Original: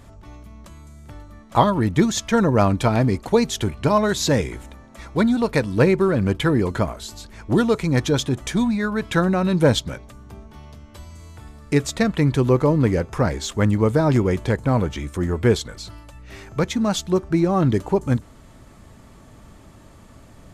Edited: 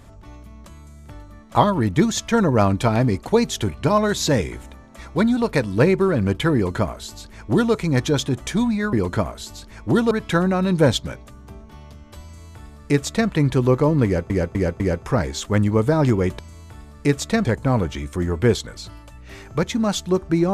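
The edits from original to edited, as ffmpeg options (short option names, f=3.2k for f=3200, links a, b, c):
-filter_complex "[0:a]asplit=8[a][b][c][d][e][f][g][h];[a]atrim=end=8.932[i];[b]atrim=start=6.548:end=7.732[j];[c]atrim=start=8.928:end=13.122[k];[d]atrim=start=12.868:end=13.122[l];[e]atrim=start=12.868:end=13.122[m];[f]atrim=start=12.868:end=14.462[n];[g]atrim=start=11.058:end=12.122[o];[h]atrim=start=14.458[p];[i][j]acrossfade=d=0.004:c1=hsin:c2=hsin[q];[q][k]acrossfade=d=0.004:c1=hsin:c2=hsin[r];[r][l]acrossfade=d=0.004:c1=hsin:c2=hsin[s];[s][m]acrossfade=d=0.004:c1=hsin:c2=hsin[t];[t][n]acrossfade=d=0.004:c1=hsin:c2=hsin[u];[u][o]acrossfade=d=0.004:c1=hsin:c2=hsin[v];[v][p]acrossfade=d=0.004:c1=hsin:c2=hsin"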